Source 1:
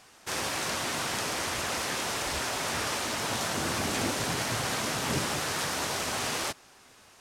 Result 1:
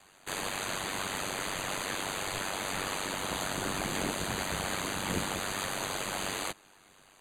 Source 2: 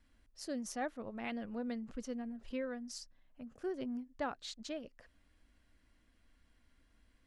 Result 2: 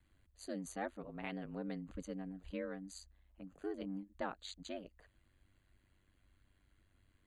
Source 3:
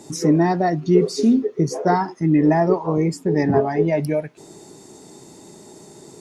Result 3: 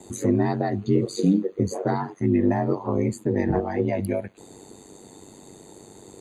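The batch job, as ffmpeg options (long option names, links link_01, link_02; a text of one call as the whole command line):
ffmpeg -i in.wav -filter_complex "[0:a]aeval=exprs='val(0)*sin(2*PI*48*n/s)':channel_layout=same,asuperstop=centerf=5400:order=12:qfactor=4.1,acrossover=split=280|3000[link_01][link_02][link_03];[link_02]acompressor=threshold=-23dB:ratio=6[link_04];[link_01][link_04][link_03]amix=inputs=3:normalize=0" out.wav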